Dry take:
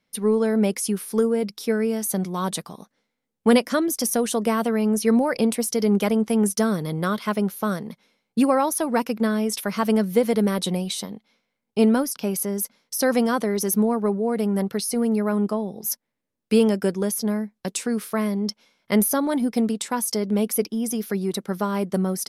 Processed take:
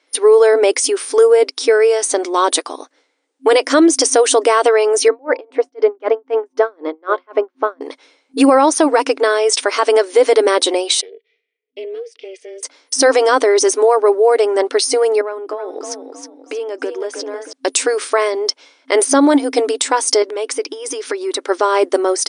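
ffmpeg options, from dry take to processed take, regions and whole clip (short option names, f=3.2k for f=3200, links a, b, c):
-filter_complex "[0:a]asettb=1/sr,asplit=3[a][b][c];[a]atrim=end=5.084[d];[b]atrim=start=5.08:end=7.81,asetpts=PTS-STARTPTS,afade=t=in:d=0.004:c=qsin,afade=t=out:st=2.726:d=0.004:c=qsin,lowpass=1.7k,bandreject=f=179.9:t=h:w=4,bandreject=f=359.8:t=h:w=4,bandreject=f=539.7:t=h:w=4,bandreject=f=719.6:t=h:w=4,bandreject=f=899.5:t=h:w=4,bandreject=f=1.0794k:t=h:w=4,aeval=exprs='val(0)*pow(10,-37*(0.5-0.5*cos(2*PI*3.9*n/s))/20)':c=same[e];[c]atrim=start=7.806[f];[d][e]acrossfade=d=0.004:c1=hsin:c2=qsin[g];[g][f]acrossfade=d=0.004:c1=qsin:c2=hsin,asettb=1/sr,asplit=3[h][i][j];[h]atrim=end=11.014[k];[i]atrim=start=11.01:end=12.63,asetpts=PTS-STARTPTS,afade=t=in:d=0.004:c=qsin,afade=t=out:st=1.616:d=0.004:c=qsin,asplit=3[l][m][n];[l]bandpass=f=270:t=q:w=8,volume=0dB[o];[m]bandpass=f=2.29k:t=q:w=8,volume=-6dB[p];[n]bandpass=f=3.01k:t=q:w=8,volume=-9dB[q];[o][p][q]amix=inputs=3:normalize=0,acompressor=threshold=-35dB:ratio=3:attack=3.2:release=140:knee=1:detection=peak,aeval=exprs='val(0)*sin(2*PI*190*n/s)':c=same[r];[j]atrim=start=12.626[s];[k][r]acrossfade=d=0.004:c1=hsin:c2=qsin[t];[t][s]acrossfade=d=0.004:c1=qsin:c2=hsin,asettb=1/sr,asplit=3[u][v][w];[u]atrim=end=15.214[x];[v]atrim=start=15.21:end=17.53,asetpts=PTS-STARTPTS,afade=t=in:d=0.004:c=qsin,afade=t=out:st=2.316:d=0.004:c=qsin,lowpass=f=2.5k:p=1,acompressor=threshold=-31dB:ratio=8:attack=3.2:release=140:knee=1:detection=peak,asplit=5[y][z][aa][ab][ac];[z]adelay=316,afreqshift=30,volume=-7dB[ad];[aa]adelay=632,afreqshift=60,volume=-16.6dB[ae];[ab]adelay=948,afreqshift=90,volume=-26.3dB[af];[ac]adelay=1264,afreqshift=120,volume=-35.9dB[ag];[y][ad][ae][af][ag]amix=inputs=5:normalize=0,atrim=end_sample=102312[ah];[w]atrim=start=17.526[ai];[x][ah]acrossfade=d=0.004:c1=hsin:c2=qsin[aj];[aj][ai]acrossfade=d=0.004:c1=qsin:c2=hsin,asettb=1/sr,asplit=3[ak][al][am];[ak]atrim=end=20.224[an];[al]atrim=start=20.22:end=21.47,asetpts=PTS-STARTPTS,afade=t=in:d=0.004:c=qsin,afade=t=out:st=1.246:d=0.004:c=qsin,equalizer=f=1.4k:t=o:w=2.5:g=4,bandreject=f=730:w=6.5,acompressor=threshold=-29dB:ratio=4:attack=3.2:release=140:knee=1:detection=peak[ao];[am]atrim=start=21.466[ap];[an][ao]acrossfade=d=0.004:c1=hsin:c2=qsin[aq];[aq][ap]acrossfade=d=0.004:c1=qsin:c2=hsin,afftfilt=real='re*between(b*sr/4096,260,9700)':imag='im*between(b*sr/4096,260,9700)':win_size=4096:overlap=0.75,alimiter=level_in=15.5dB:limit=-1dB:release=50:level=0:latency=1,volume=-1.5dB"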